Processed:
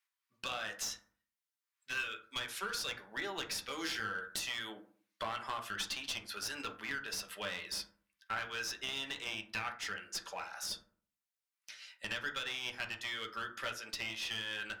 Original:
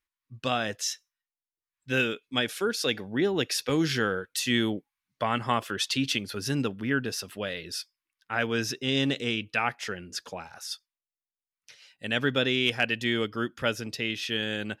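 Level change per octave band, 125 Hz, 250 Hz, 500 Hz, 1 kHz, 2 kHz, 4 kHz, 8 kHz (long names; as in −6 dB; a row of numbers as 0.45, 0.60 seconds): −21.5, −21.5, −17.5, −9.0, −8.5, −8.5, −6.5 decibels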